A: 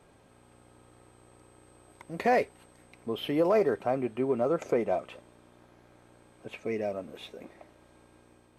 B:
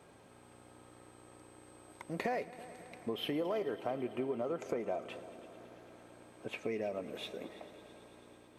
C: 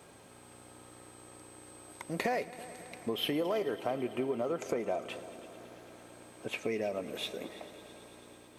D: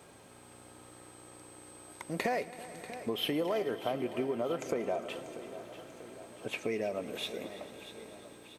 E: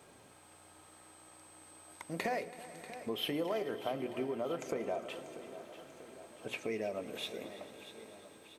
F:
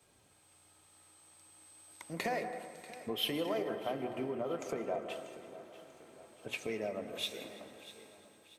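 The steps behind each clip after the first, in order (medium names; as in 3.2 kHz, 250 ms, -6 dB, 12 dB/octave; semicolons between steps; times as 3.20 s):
high-pass 110 Hz 6 dB/octave; compression 5:1, threshold -35 dBFS, peak gain reduction 13 dB; multi-head delay 110 ms, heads all three, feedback 72%, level -21.5 dB; trim +1 dB
treble shelf 3.7 kHz +8 dB; trim +3 dB
feedback delay 640 ms, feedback 58%, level -14 dB
hum notches 60/120/180/240/300/360/420/480/540 Hz; trim -3 dB
reverberation RT60 1.0 s, pre-delay 150 ms, DRR 7.5 dB; in parallel at +0.5 dB: compression, threshold -45 dBFS, peak gain reduction 13.5 dB; on the sum: three bands expanded up and down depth 70%; trim -3.5 dB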